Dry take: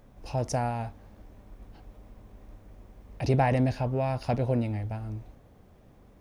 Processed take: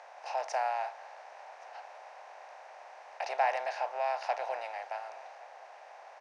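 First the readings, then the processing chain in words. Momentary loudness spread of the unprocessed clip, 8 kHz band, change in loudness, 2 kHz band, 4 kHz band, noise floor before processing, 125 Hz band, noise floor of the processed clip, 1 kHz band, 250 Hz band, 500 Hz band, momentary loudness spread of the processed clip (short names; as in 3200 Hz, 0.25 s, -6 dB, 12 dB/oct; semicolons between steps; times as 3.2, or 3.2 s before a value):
12 LU, n/a, -5.5 dB, +1.5 dB, -1.5 dB, -56 dBFS, under -40 dB, -52 dBFS, +1.0 dB, under -35 dB, -5.0 dB, 20 LU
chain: per-bin compression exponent 0.6; steep high-pass 650 Hz 36 dB/oct; air absorption 120 m; echo 1.119 s -23.5 dB; gain -1.5 dB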